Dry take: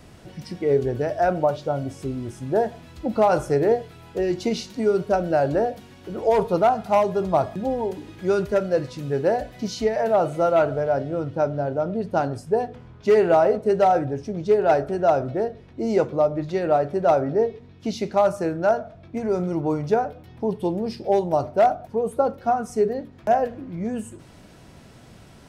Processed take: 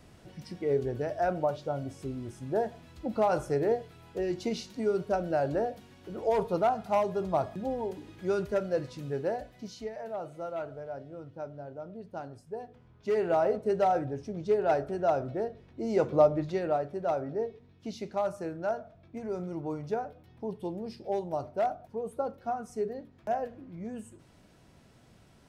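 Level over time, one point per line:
0:09.03 −8 dB
0:10.02 −17.5 dB
0:12.54 −17.5 dB
0:13.48 −8 dB
0:15.91 −8 dB
0:16.19 −1 dB
0:16.90 −11.5 dB

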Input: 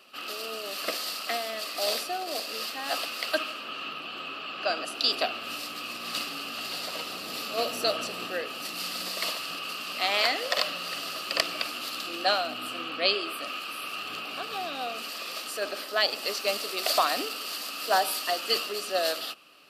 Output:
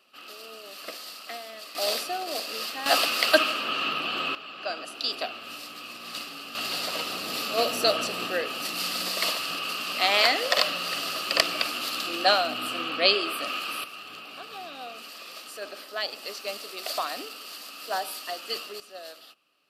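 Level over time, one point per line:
−7.5 dB
from 0:01.75 +1 dB
from 0:02.86 +8.5 dB
from 0:04.35 −4 dB
from 0:06.55 +4 dB
from 0:13.84 −6 dB
from 0:18.80 −15 dB

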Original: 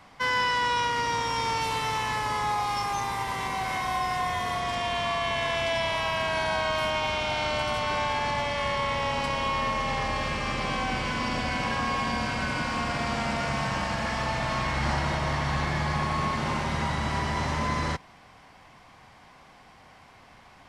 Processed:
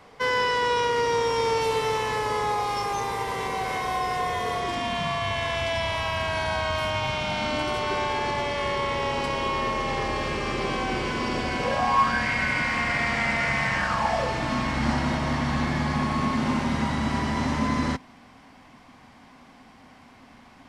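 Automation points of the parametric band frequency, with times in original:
parametric band +14 dB 0.45 octaves
0:04.59 450 Hz
0:05.36 83 Hz
0:06.85 83 Hz
0:07.74 380 Hz
0:11.56 380 Hz
0:12.26 2,000 Hz
0:13.76 2,000 Hz
0:14.50 250 Hz

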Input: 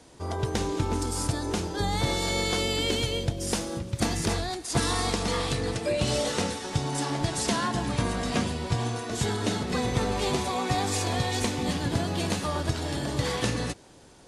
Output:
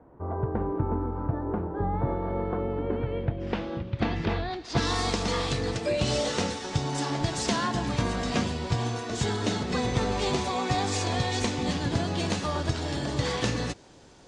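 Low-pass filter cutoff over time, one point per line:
low-pass filter 24 dB per octave
0:02.86 1,300 Hz
0:03.66 3,300 Hz
0:04.45 3,300 Hz
0:05.00 7,600 Hz

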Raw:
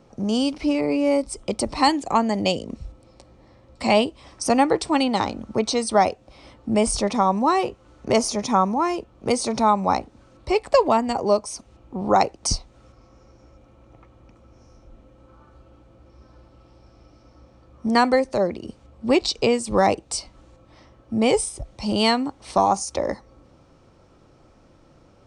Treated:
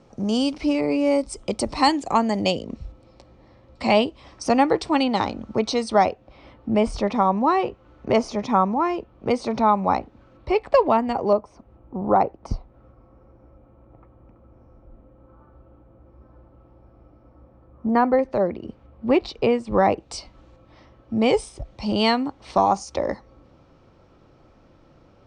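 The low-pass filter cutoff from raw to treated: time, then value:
8,800 Hz
from 0:02.50 5,000 Hz
from 0:06.06 3,000 Hz
from 0:11.33 1,300 Hz
from 0:18.19 2,300 Hz
from 0:20.00 4,500 Hz

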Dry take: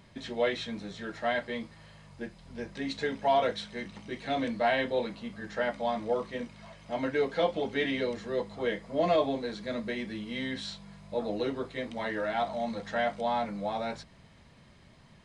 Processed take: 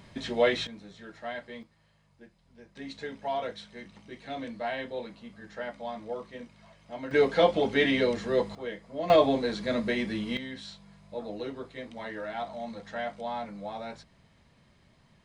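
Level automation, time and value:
+4.5 dB
from 0:00.67 −7.5 dB
from 0:01.63 −14 dB
from 0:02.76 −6.5 dB
from 0:07.11 +5.5 dB
from 0:08.55 −6 dB
from 0:09.10 +5.5 dB
from 0:10.37 −5 dB

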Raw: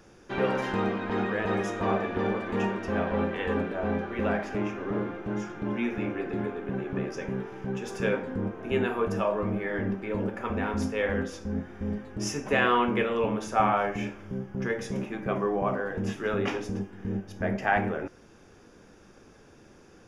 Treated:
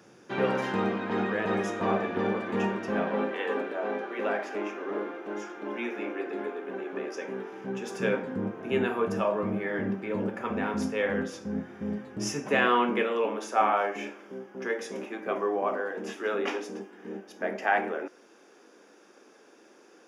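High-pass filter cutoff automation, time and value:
high-pass filter 24 dB per octave
0:02.84 120 Hz
0:03.41 300 Hz
0:07.14 300 Hz
0:08.34 120 Hz
0:12.37 120 Hz
0:13.23 280 Hz

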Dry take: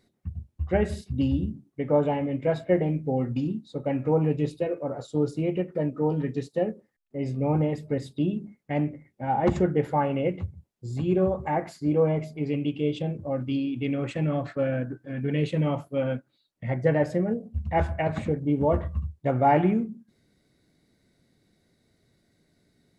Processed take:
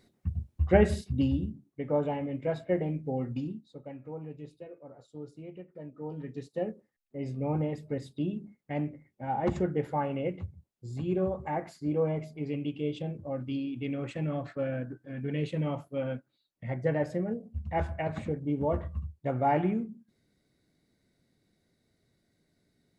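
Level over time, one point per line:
0:00.87 +2.5 dB
0:01.54 −6 dB
0:03.38 −6 dB
0:04.00 −18 dB
0:05.76 −18 dB
0:06.65 −6 dB

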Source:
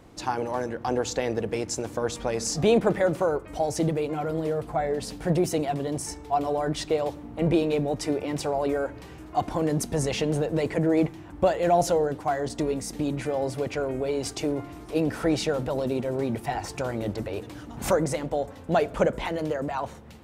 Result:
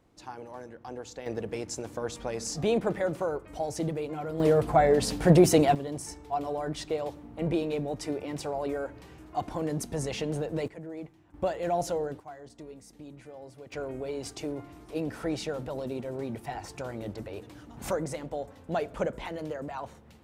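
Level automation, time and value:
−14 dB
from 0:01.26 −6 dB
from 0:04.40 +5.5 dB
from 0:05.75 −6 dB
from 0:10.68 −18 dB
from 0:11.34 −7.5 dB
from 0:12.20 −18.5 dB
from 0:13.72 −7.5 dB

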